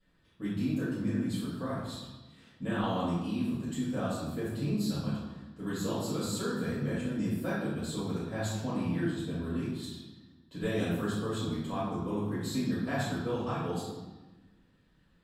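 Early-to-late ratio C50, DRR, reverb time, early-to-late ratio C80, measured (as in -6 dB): -1.0 dB, -12.0 dB, 1.2 s, 2.5 dB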